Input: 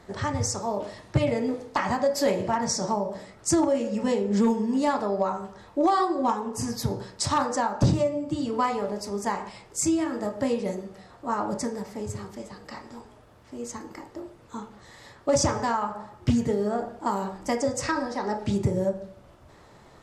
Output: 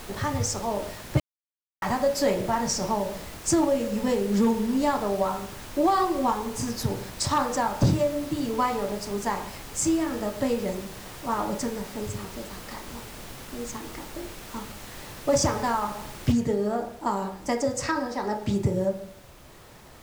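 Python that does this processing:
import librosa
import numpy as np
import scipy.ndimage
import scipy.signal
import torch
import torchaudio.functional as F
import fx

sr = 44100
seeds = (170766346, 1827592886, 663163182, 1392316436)

y = fx.noise_floor_step(x, sr, seeds[0], at_s=16.32, before_db=-41, after_db=-52, tilt_db=3.0)
y = fx.edit(y, sr, fx.silence(start_s=1.2, length_s=0.62), tone=tone)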